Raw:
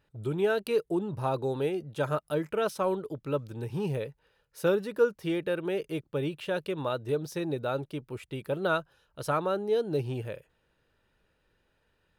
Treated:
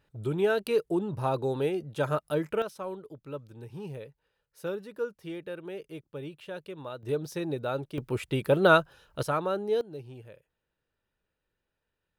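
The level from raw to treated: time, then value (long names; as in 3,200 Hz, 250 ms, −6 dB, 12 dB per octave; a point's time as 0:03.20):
+1 dB
from 0:02.62 −8.5 dB
from 0:07.03 −0.5 dB
from 0:07.98 +8 dB
from 0:09.23 −0.5 dB
from 0:09.81 −12 dB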